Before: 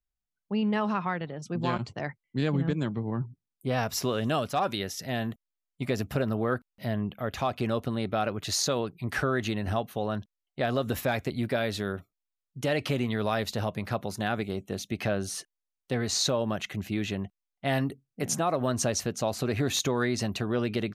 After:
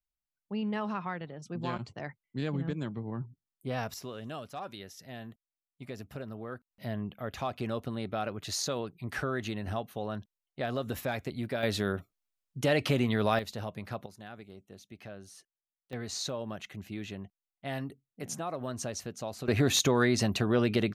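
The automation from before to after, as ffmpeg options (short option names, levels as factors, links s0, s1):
-af "asetnsamples=n=441:p=0,asendcmd='3.94 volume volume -13dB;6.71 volume volume -5.5dB;11.63 volume volume 1dB;13.39 volume volume -7.5dB;14.06 volume volume -17dB;15.93 volume volume -9dB;19.48 volume volume 2dB',volume=0.501"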